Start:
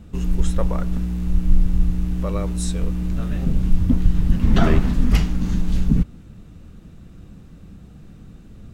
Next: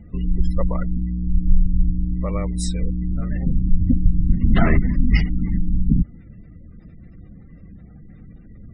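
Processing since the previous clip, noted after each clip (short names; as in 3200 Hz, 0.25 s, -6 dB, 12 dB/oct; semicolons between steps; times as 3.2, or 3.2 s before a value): thirty-one-band EQ 400 Hz -4 dB, 2000 Hz +10 dB, 5000 Hz +7 dB; spectral gate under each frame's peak -30 dB strong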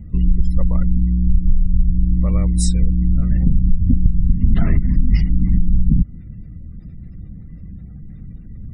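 tone controls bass +13 dB, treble +11 dB; compressor 12:1, threshold -4 dBFS, peak gain reduction 10.5 dB; gain -4 dB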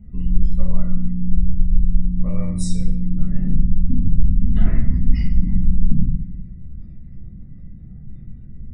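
shoebox room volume 170 m³, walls mixed, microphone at 1.4 m; gain -10.5 dB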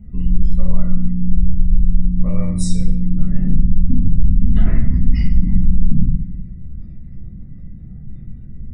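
maximiser +4.5 dB; gain -1 dB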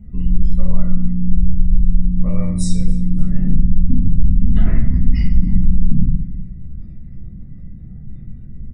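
feedback echo 0.283 s, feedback 37%, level -23.5 dB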